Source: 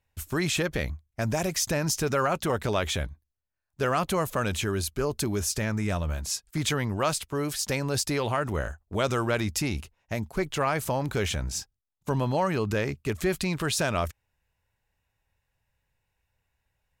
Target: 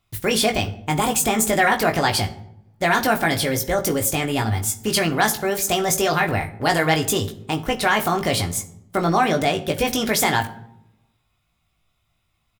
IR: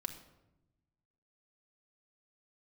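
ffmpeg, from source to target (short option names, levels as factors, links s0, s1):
-filter_complex "[0:a]asplit=2[s0][s1];[s1]adelay=25,volume=0.562[s2];[s0][s2]amix=inputs=2:normalize=0,asplit=2[s3][s4];[1:a]atrim=start_sample=2205,lowshelf=f=130:g=-7[s5];[s4][s5]afir=irnorm=-1:irlink=0,volume=1.5[s6];[s3][s6]amix=inputs=2:normalize=0,asetrate=59535,aresample=44100"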